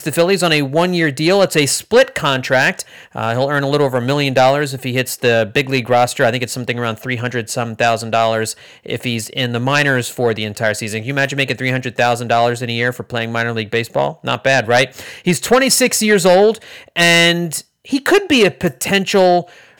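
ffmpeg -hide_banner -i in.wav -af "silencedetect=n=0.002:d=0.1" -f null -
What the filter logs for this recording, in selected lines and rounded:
silence_start: 17.69
silence_end: 17.84 | silence_duration: 0.15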